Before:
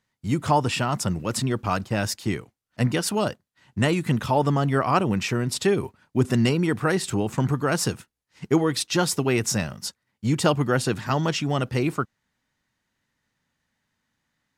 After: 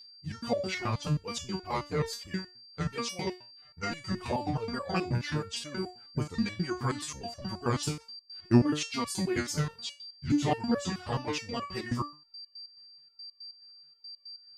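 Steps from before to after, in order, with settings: sawtooth pitch modulation -8.5 st, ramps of 206 ms; whistle 4.7 kHz -40 dBFS; resonator arpeggio 9.4 Hz 120–570 Hz; trim +6.5 dB

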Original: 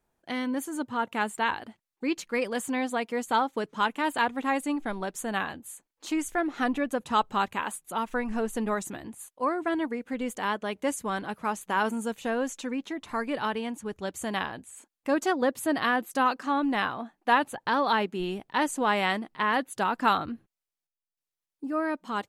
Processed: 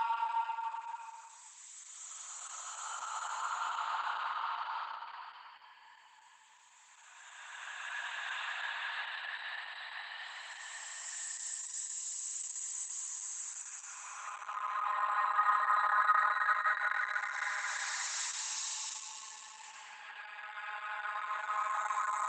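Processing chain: slices played last to first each 109 ms, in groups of 6; elliptic high-pass 930 Hz, stop band 60 dB; Paulstretch 33×, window 0.10 s, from 8.37 s; trim +3 dB; Opus 10 kbps 48 kHz

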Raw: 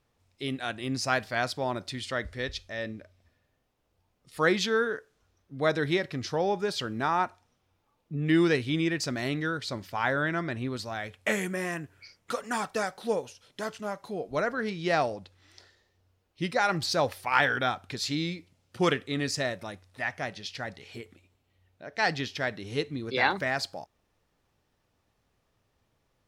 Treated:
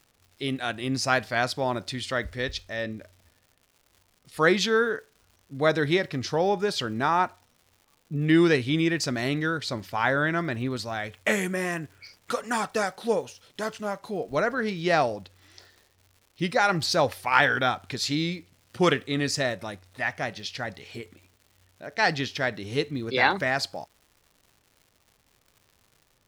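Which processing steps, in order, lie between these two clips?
crackle 220 per s -50 dBFS; trim +3.5 dB

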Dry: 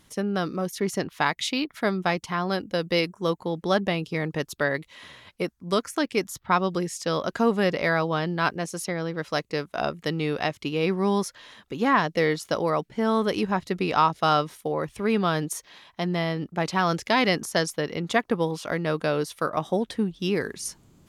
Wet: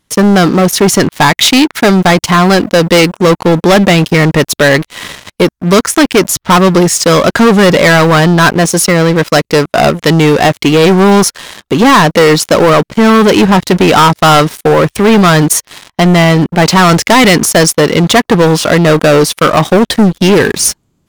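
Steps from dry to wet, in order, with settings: waveshaping leveller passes 5; trim +6.5 dB

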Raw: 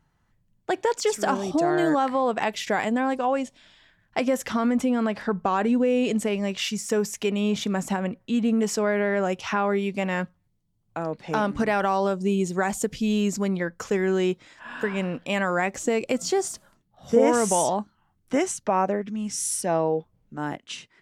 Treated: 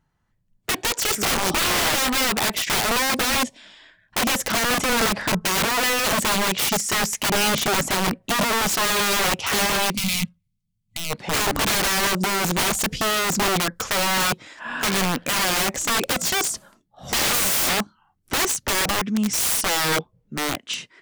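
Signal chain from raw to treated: spectral noise reduction 11 dB; integer overflow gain 24 dB; time-frequency box 9.96–11.10 s, 240–2000 Hz -17 dB; trim +8 dB

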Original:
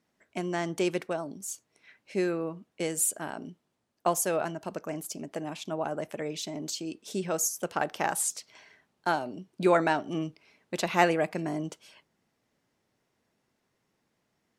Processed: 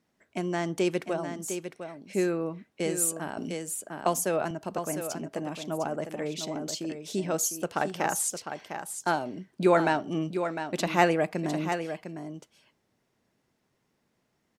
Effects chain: bass shelf 370 Hz +3 dB; delay 704 ms -8.5 dB; 3.37–4.51 s: three bands compressed up and down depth 40%

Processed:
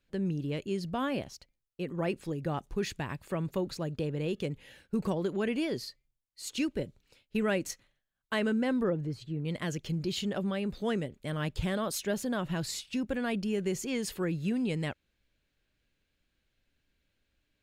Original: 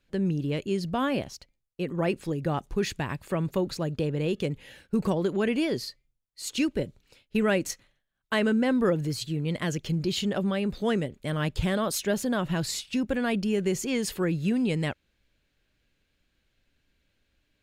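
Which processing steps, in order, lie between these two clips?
8.83–9.45 s: low-pass 1.2 kHz 6 dB/octave; trim -5 dB

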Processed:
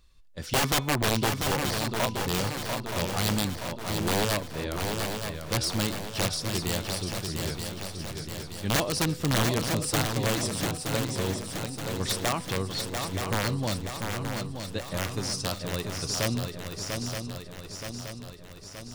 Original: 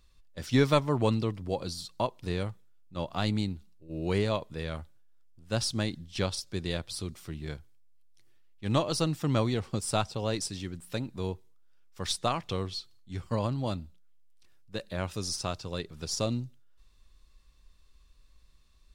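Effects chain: de-hum 249 Hz, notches 32; integer overflow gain 20.5 dB; on a send: shuffle delay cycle 924 ms, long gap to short 3:1, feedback 57%, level -5.5 dB; on the sum: trim +2 dB

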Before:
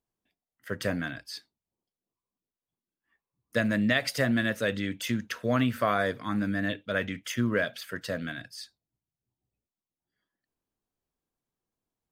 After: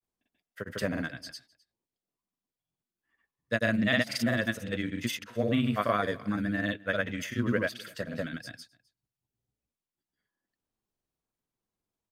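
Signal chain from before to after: granulator, grains 20 per s, pitch spread up and down by 0 st; delay 257 ms -24 dB

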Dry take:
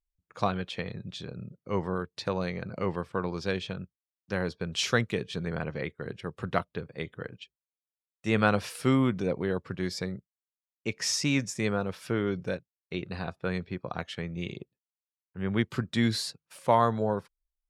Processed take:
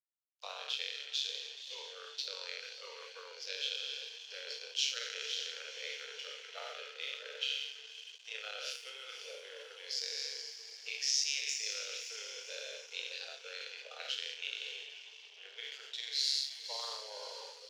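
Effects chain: spectral sustain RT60 1.11 s; AM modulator 140 Hz, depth 55%; reverse; compression 6:1, threshold -43 dBFS, peak gain reduction 23 dB; reverse; echo that smears into a reverb 529 ms, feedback 50%, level -8 dB; spectral noise reduction 21 dB; crossover distortion -59.5 dBFS; steep high-pass 440 Hz 96 dB/octave; high-order bell 4.1 kHz +16 dB

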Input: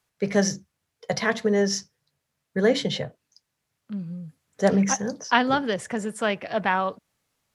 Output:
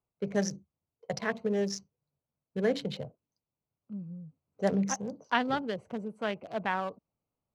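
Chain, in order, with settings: local Wiener filter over 25 samples; trim -7.5 dB

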